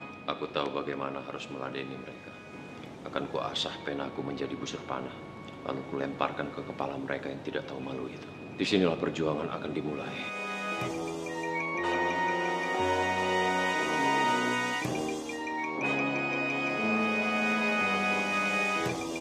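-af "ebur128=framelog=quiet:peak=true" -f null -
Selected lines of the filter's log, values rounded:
Integrated loudness:
  I:         -30.7 LUFS
  Threshold: -41.0 LUFS
Loudness range:
  LRA:         8.3 LU
  Threshold: -51.2 LUFS
  LRA low:   -36.2 LUFS
  LRA high:  -28.0 LUFS
True peak:
  Peak:      -11.4 dBFS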